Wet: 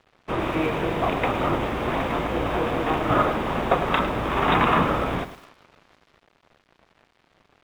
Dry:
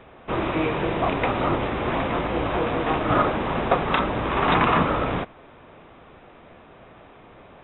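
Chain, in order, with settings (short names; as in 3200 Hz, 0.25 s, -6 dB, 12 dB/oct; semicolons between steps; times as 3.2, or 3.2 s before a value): thinning echo 0.706 s, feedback 42%, high-pass 1100 Hz, level -22 dB; crossover distortion -44 dBFS; lo-fi delay 0.104 s, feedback 35%, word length 7-bit, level -12 dB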